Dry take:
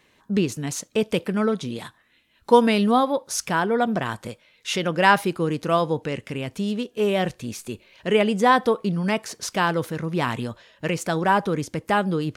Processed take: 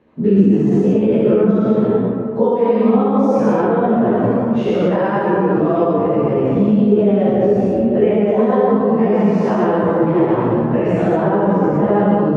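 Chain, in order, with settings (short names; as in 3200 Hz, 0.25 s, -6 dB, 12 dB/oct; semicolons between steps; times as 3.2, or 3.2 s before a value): spectral dilation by 0.24 s; digital reverb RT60 2.6 s, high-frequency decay 0.3×, pre-delay 25 ms, DRR -1.5 dB; compressor 5:1, threshold -12 dBFS, peak gain reduction 8.5 dB; band-pass 330 Hz, Q 0.65; tilt -2 dB/oct; maximiser +7.5 dB; ensemble effect; gain -2 dB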